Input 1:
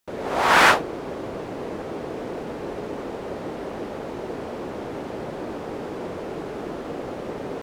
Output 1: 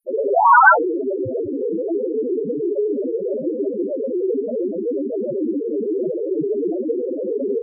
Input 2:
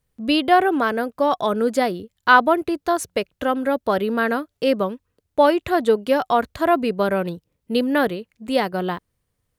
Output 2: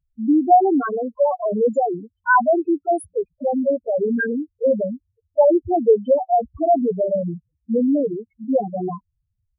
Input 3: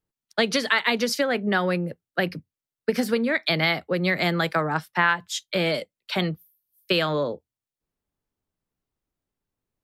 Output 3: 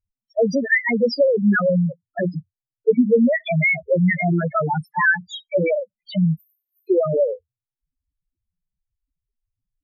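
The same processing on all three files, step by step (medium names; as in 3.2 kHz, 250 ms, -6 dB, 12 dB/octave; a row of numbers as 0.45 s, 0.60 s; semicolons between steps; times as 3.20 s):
in parallel at -8 dB: saturation -13.5 dBFS; on the sum: loudest bins only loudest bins 2; normalise loudness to -20 LUFS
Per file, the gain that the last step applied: +15.0 dB, +2.5 dB, +8.0 dB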